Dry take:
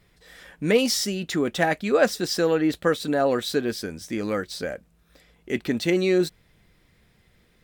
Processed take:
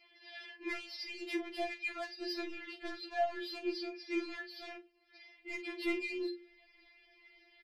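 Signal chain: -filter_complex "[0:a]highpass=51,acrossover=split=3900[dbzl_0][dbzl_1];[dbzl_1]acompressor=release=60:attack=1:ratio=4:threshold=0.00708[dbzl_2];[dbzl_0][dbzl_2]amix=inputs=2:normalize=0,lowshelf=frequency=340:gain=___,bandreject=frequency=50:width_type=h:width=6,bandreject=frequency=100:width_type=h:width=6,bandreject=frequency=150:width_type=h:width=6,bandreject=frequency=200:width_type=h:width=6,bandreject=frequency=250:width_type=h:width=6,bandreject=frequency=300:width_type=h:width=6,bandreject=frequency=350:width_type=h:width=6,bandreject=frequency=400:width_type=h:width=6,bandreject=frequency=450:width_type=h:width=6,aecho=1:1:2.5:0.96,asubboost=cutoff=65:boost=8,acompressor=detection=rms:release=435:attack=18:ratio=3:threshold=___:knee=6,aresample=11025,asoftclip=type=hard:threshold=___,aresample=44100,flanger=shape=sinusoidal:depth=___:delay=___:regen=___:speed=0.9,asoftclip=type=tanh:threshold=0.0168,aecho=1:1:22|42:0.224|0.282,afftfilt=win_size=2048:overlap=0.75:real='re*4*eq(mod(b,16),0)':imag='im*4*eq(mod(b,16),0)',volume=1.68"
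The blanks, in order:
-11, 0.0251, 0.0398, 9.8, 7.4, 31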